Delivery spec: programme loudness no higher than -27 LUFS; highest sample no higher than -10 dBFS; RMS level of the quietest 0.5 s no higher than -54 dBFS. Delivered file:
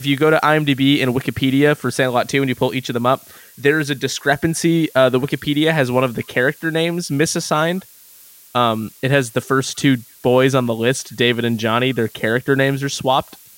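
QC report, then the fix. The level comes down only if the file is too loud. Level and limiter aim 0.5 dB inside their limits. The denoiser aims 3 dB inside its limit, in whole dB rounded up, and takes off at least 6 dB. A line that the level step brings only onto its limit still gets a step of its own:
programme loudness -17.5 LUFS: fail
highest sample -2.5 dBFS: fail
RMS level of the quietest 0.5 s -45 dBFS: fail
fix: trim -10 dB

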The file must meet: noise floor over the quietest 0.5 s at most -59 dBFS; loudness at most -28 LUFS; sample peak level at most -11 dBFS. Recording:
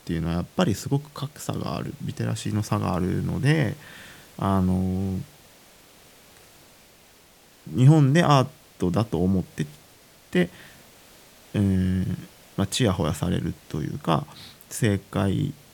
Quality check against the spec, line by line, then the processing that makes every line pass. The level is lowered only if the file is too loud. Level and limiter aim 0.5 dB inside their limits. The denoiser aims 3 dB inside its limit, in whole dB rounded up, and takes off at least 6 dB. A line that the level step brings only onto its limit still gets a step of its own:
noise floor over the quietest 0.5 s -54 dBFS: fail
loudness -25.0 LUFS: fail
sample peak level -4.0 dBFS: fail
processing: noise reduction 6 dB, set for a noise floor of -54 dBFS; trim -3.5 dB; peak limiter -11.5 dBFS

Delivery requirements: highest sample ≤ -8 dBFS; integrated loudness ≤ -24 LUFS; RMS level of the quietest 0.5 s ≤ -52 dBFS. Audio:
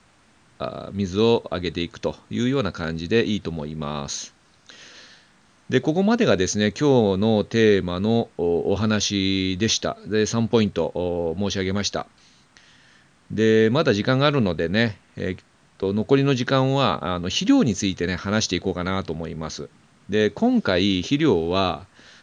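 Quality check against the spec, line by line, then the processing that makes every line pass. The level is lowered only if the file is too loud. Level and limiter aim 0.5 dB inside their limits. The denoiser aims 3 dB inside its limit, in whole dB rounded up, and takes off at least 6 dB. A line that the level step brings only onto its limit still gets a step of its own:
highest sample -5.5 dBFS: fail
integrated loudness -22.0 LUFS: fail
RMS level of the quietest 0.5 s -57 dBFS: pass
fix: trim -2.5 dB; peak limiter -8.5 dBFS

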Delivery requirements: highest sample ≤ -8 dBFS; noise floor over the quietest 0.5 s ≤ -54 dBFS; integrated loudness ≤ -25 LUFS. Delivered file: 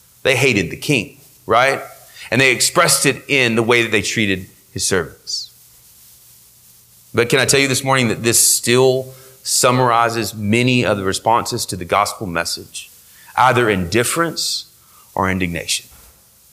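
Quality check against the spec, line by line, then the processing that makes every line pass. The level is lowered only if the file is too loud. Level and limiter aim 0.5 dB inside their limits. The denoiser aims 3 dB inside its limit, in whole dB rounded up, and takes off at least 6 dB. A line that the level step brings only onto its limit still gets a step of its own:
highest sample -2.0 dBFS: fail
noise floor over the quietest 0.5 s -48 dBFS: fail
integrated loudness -16.0 LUFS: fail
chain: trim -9.5 dB

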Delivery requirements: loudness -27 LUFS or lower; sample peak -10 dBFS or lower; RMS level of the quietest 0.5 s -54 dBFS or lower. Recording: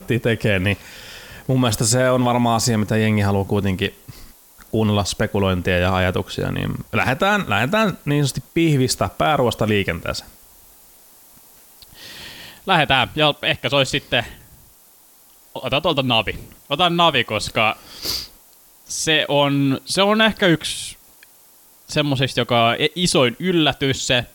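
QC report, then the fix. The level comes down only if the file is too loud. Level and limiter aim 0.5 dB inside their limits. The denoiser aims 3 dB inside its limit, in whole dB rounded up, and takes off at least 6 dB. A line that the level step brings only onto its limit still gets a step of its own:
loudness -19.0 LUFS: fail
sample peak -2.5 dBFS: fail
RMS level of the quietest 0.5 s -50 dBFS: fail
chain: trim -8.5 dB

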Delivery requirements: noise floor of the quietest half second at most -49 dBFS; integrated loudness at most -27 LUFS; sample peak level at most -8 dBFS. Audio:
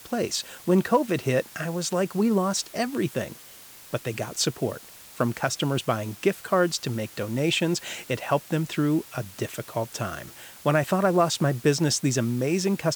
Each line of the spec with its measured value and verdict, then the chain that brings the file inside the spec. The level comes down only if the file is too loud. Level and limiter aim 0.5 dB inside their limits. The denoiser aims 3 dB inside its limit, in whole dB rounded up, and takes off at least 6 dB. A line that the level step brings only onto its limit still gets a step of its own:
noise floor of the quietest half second -47 dBFS: fail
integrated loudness -26.0 LUFS: fail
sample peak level -9.5 dBFS: pass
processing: noise reduction 6 dB, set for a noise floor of -47 dBFS; trim -1.5 dB

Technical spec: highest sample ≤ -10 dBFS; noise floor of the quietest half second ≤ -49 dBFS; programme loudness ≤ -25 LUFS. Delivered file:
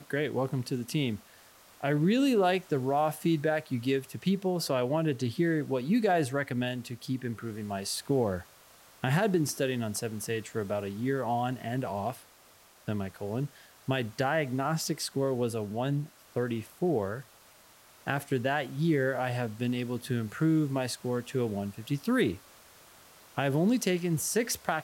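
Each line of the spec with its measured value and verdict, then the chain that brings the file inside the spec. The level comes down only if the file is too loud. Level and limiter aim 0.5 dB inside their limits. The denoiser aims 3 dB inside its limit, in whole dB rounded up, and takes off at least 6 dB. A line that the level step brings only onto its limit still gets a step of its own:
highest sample -11.5 dBFS: pass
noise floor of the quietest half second -58 dBFS: pass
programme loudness -30.5 LUFS: pass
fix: none needed

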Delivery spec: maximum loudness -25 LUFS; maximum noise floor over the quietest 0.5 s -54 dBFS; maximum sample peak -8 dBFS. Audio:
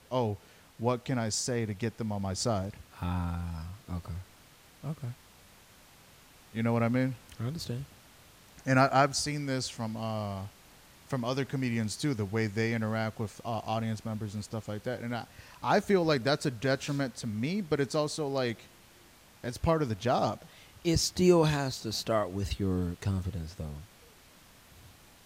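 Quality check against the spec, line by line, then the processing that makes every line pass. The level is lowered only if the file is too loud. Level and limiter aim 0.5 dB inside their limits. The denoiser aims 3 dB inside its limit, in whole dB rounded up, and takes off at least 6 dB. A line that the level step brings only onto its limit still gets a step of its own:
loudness -31.5 LUFS: pass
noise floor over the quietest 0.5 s -57 dBFS: pass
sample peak -10.0 dBFS: pass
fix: none needed

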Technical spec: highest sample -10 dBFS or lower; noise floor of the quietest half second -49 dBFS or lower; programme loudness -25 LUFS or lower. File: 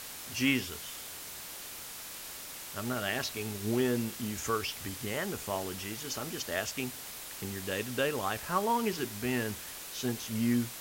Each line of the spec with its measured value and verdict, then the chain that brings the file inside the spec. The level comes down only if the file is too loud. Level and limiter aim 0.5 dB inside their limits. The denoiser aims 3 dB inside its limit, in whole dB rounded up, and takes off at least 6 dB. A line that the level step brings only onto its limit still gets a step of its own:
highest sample -15.5 dBFS: pass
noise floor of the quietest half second -44 dBFS: fail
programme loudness -34.0 LUFS: pass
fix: noise reduction 8 dB, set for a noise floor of -44 dBFS

